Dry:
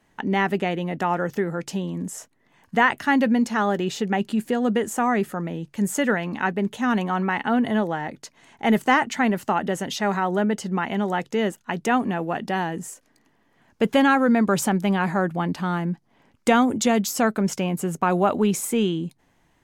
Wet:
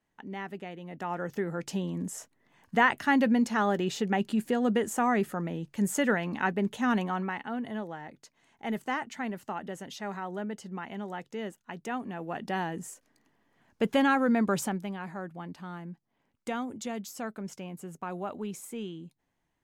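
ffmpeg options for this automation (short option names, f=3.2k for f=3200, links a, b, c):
-af "volume=2.5dB,afade=t=in:st=0.81:d=0.95:silence=0.251189,afade=t=out:st=6.91:d=0.55:silence=0.354813,afade=t=in:st=12.09:d=0.45:silence=0.446684,afade=t=out:st=14.5:d=0.42:silence=0.334965"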